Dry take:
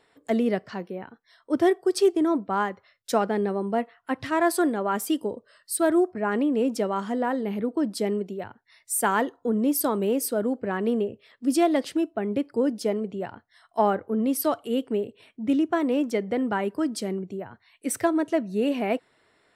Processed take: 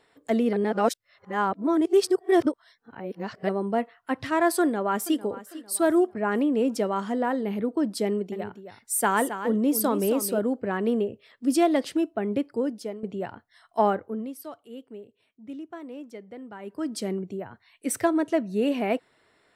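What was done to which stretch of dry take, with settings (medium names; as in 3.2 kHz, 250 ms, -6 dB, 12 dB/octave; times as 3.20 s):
0.53–3.49 s: reverse
4.61–5.23 s: echo throw 450 ms, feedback 40%, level -16 dB
8.05–10.39 s: delay 269 ms -10 dB
12.36–13.03 s: fade out, to -13.5 dB
13.87–17.06 s: dip -15.5 dB, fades 0.47 s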